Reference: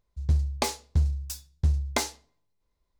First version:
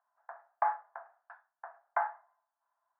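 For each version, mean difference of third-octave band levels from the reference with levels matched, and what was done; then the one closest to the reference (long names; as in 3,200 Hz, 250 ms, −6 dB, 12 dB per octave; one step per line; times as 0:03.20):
17.5 dB: Chebyshev band-pass filter 670–1,700 Hz, order 4
brickwall limiter −26 dBFS, peak gain reduction 8.5 dB
level +8.5 dB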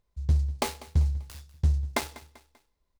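5.0 dB: gap after every zero crossing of 0.095 ms
on a send: repeating echo 195 ms, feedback 42%, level −18.5 dB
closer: second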